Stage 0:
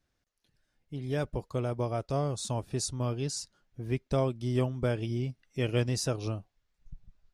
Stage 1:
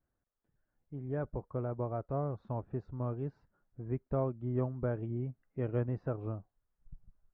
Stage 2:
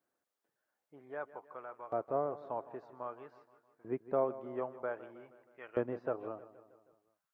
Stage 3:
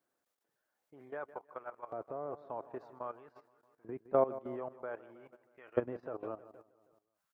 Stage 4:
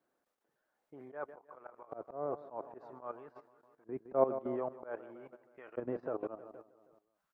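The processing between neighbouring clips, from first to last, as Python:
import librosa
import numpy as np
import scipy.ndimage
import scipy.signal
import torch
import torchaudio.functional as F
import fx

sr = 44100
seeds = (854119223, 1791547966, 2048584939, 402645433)

y1 = scipy.signal.sosfilt(scipy.signal.butter(4, 1500.0, 'lowpass', fs=sr, output='sos'), x)
y1 = y1 * librosa.db_to_amplitude(-4.5)
y2 = fx.filter_lfo_highpass(y1, sr, shape='saw_up', hz=0.52, low_hz=330.0, high_hz=1500.0, q=0.84)
y2 = fx.echo_feedback(y2, sr, ms=158, feedback_pct=57, wet_db=-16.0)
y2 = y2 * librosa.db_to_amplitude(3.5)
y3 = fx.level_steps(y2, sr, step_db=15)
y3 = y3 * librosa.db_to_amplitude(5.0)
y4 = fx.peak_eq(y3, sr, hz=100.0, db=-9.0, octaves=0.45)
y4 = fx.auto_swell(y4, sr, attack_ms=124.0)
y4 = fx.high_shelf(y4, sr, hz=2500.0, db=-10.5)
y4 = y4 * librosa.db_to_amplitude(5.0)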